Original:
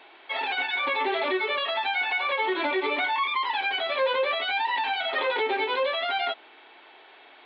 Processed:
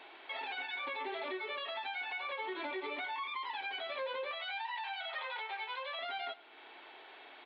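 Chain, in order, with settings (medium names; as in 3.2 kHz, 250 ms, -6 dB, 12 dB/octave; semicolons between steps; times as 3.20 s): 4.31–5.99 s: high-pass 680 Hz 24 dB/octave; compression 2:1, threshold -44 dBFS, peak gain reduction 12.5 dB; on a send: feedback delay 103 ms, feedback 40%, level -20 dB; on the sum: trim -2.5 dB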